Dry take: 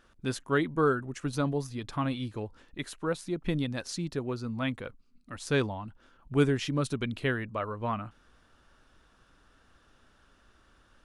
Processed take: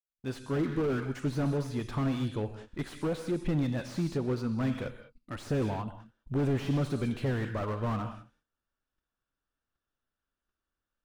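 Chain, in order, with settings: opening faded in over 0.68 s; gate -54 dBFS, range -31 dB; in parallel at 0 dB: limiter -23 dBFS, peak gain reduction 11.5 dB; on the sum: hard clip -21 dBFS, distortion -12 dB; non-linear reverb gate 0.23 s flat, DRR 12 dB; slew limiter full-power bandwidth 27 Hz; gain -2.5 dB

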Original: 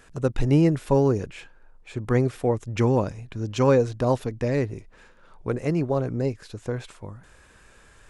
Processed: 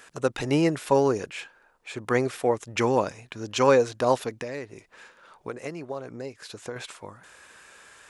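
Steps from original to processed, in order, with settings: 4.37–6.76 compressor 6:1, threshold -30 dBFS, peak gain reduction 11 dB; HPF 790 Hz 6 dB/oct; gain +6 dB

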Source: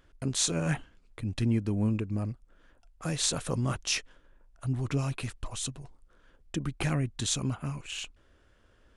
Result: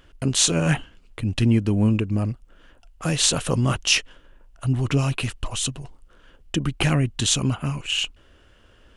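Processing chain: bell 2900 Hz +8.5 dB 0.25 oct; gain +8.5 dB

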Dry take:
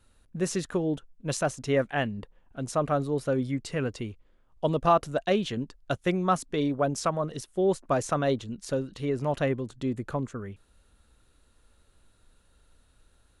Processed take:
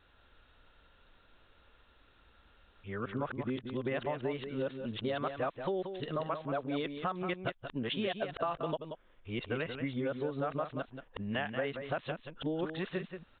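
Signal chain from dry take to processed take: whole clip reversed; low shelf 410 Hz -11 dB; in parallel at +1 dB: limiter -23 dBFS, peak gain reduction 11 dB; on the sum: compressor 6:1, threshold -32 dBFS, peak gain reduction 15.5 dB; on a send: echo 0.182 s -8 dB; on the sum: downsampling 8000 Hz

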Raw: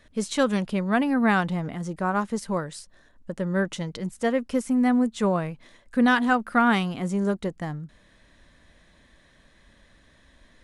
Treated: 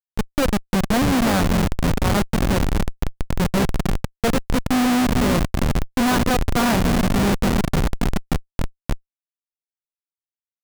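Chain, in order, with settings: echo with dull and thin repeats by turns 0.289 s, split 920 Hz, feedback 89%, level -6.5 dB; Schmitt trigger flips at -20.5 dBFS; gain +7 dB

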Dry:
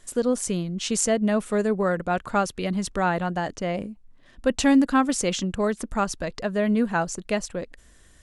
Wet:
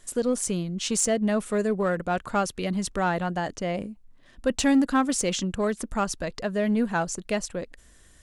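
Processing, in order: high shelf 6300 Hz +3.5 dB; in parallel at -8.5 dB: hard clip -21 dBFS, distortion -9 dB; on the sum: gain -4 dB

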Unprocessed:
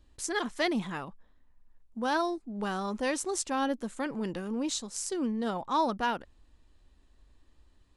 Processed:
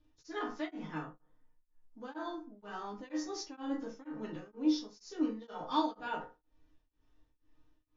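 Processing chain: nonlinear frequency compression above 3000 Hz 1.5:1; 5.21–5.94 bell 4900 Hz +12 dB 1.7 oct; resonator bank G#2 major, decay 0.22 s; FDN reverb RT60 0.41 s, low-frequency decay 1×, high-frequency decay 0.35×, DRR -2.5 dB; beating tremolo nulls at 2.1 Hz; gain +2 dB

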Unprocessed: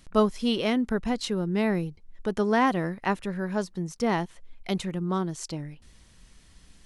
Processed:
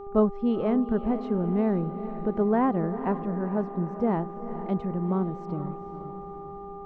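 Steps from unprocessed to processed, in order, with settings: Bessel low-pass 720 Hz, order 2; buzz 400 Hz, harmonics 3, -42 dBFS -7 dB/oct; diffused feedback echo 0.457 s, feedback 50%, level -11 dB; gain +1.5 dB

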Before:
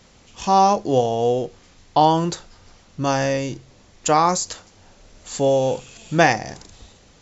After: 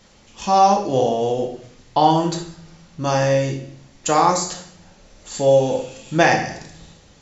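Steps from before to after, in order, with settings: on a send: low shelf 130 Hz -11.5 dB + reverb RT60 0.65 s, pre-delay 4 ms, DRR 1 dB; on the sum: gain -1.5 dB

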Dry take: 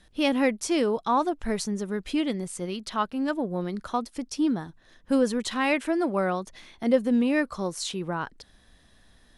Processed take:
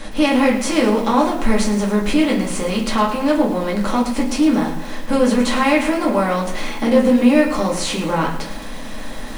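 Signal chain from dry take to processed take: per-bin compression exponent 0.6; in parallel at +0.5 dB: compressor, threshold -28 dBFS, peak gain reduction 13.5 dB; on the sum: reverb RT60 0.35 s, pre-delay 3 ms, DRR -3.5 dB; lo-fi delay 0.108 s, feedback 55%, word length 5-bit, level -12 dB; gain -3 dB

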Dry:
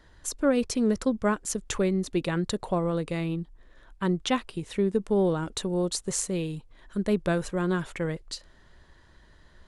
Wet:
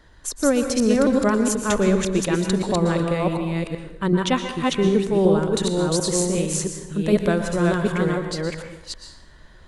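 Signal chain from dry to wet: reverse delay 0.375 s, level -1 dB; plate-style reverb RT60 0.78 s, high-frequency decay 0.8×, pre-delay 0.105 s, DRR 7 dB; gain +4 dB

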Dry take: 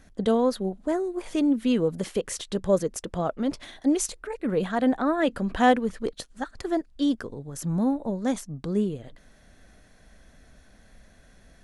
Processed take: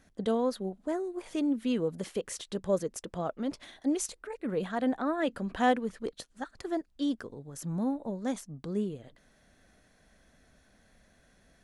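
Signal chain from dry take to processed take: low shelf 63 Hz -9.5 dB; gain -6 dB

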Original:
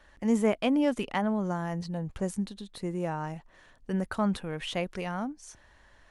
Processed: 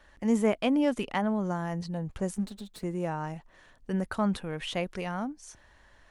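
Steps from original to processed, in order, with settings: 2.36–2.84 minimum comb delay 4.7 ms

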